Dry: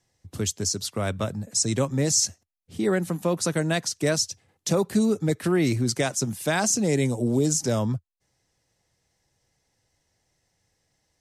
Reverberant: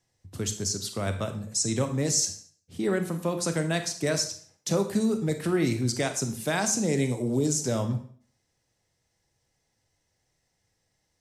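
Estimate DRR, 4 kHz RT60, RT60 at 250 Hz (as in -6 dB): 7.5 dB, 0.45 s, 0.50 s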